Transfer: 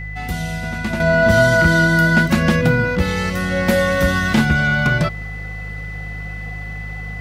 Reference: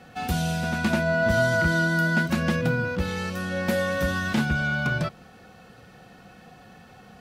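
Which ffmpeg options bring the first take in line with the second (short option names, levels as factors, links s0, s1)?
-af "bandreject=f=51.7:t=h:w=4,bandreject=f=103.4:t=h:w=4,bandreject=f=155.1:t=h:w=4,bandreject=f=2000:w=30,asetnsamples=n=441:p=0,asendcmd='1 volume volume -8.5dB',volume=1"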